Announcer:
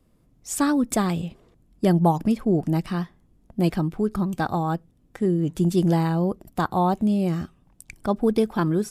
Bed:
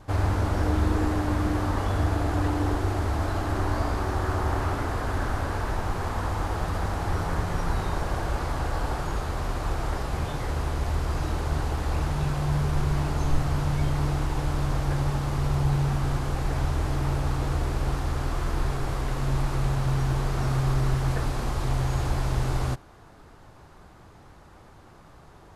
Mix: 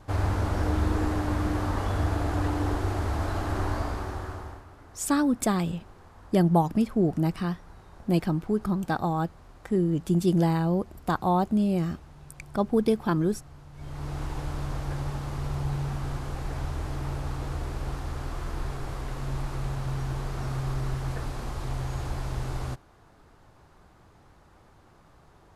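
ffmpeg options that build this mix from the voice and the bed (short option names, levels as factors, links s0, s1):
-filter_complex "[0:a]adelay=4500,volume=0.75[s0];[1:a]volume=5.31,afade=t=out:st=3.64:d=1:silence=0.0944061,afade=t=in:st=13.73:d=0.51:silence=0.149624[s1];[s0][s1]amix=inputs=2:normalize=0"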